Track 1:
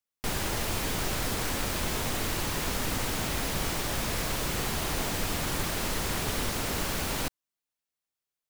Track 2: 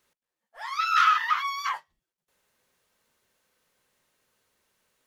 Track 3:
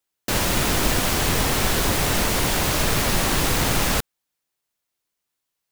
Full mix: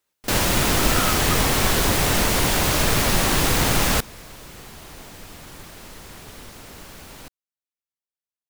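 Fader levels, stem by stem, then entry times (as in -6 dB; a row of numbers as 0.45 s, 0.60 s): -10.5 dB, -8.0 dB, +1.5 dB; 0.00 s, 0.00 s, 0.00 s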